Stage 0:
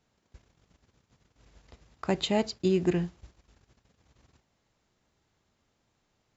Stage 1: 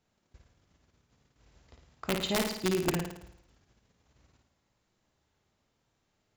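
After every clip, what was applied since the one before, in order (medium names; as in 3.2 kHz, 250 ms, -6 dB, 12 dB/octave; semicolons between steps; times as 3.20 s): integer overflow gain 16 dB; on a send: flutter echo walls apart 9.4 m, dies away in 0.7 s; on the sum: trim -4 dB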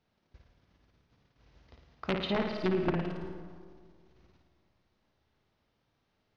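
low-pass that closes with the level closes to 1.9 kHz, closed at -25 dBFS; Savitzky-Golay filter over 15 samples; on a send at -10 dB: reverberation RT60 2.0 s, pre-delay 115 ms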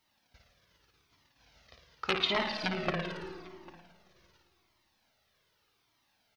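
tilt EQ +3 dB/octave; delay 798 ms -22.5 dB; Shepard-style flanger falling 0.84 Hz; trim +7 dB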